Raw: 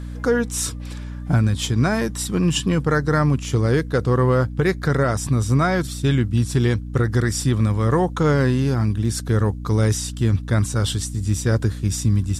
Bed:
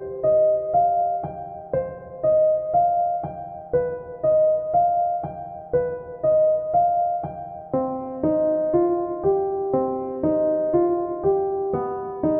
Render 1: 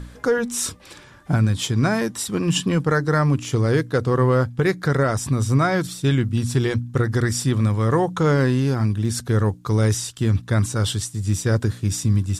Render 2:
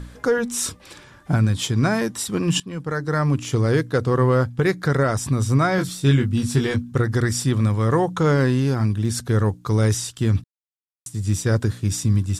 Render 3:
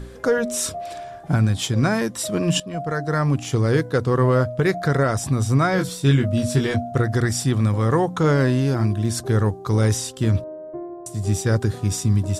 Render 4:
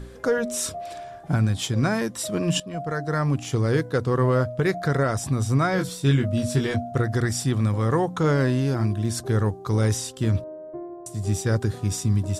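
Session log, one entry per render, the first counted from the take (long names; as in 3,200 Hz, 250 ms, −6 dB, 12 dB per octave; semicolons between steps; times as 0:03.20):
hum removal 60 Hz, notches 5
0:02.60–0:03.41: fade in, from −17 dB; 0:05.76–0:06.92: double-tracking delay 21 ms −5 dB; 0:10.44–0:11.06: silence
mix in bed −13.5 dB
level −3 dB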